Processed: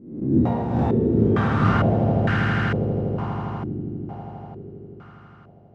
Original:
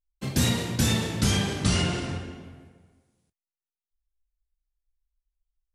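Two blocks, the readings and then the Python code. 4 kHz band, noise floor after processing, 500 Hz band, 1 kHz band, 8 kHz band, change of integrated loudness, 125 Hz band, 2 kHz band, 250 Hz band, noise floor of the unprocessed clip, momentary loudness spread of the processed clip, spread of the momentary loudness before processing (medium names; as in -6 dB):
-11.0 dB, -48 dBFS, +11.0 dB, +11.5 dB, under -25 dB, +4.0 dB, +7.0 dB, +6.0 dB, +8.5 dB, under -85 dBFS, 18 LU, 12 LU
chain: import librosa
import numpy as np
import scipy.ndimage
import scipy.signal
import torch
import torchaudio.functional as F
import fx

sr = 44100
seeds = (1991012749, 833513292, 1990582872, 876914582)

y = fx.spec_swells(x, sr, rise_s=0.67)
y = scipy.signal.sosfilt(scipy.signal.butter(2, 68.0, 'highpass', fs=sr, output='sos'), y)
y = fx.echo_swell(y, sr, ms=81, loudest=8, wet_db=-10.0)
y = fx.filter_held_lowpass(y, sr, hz=2.2, low_hz=320.0, high_hz=1600.0)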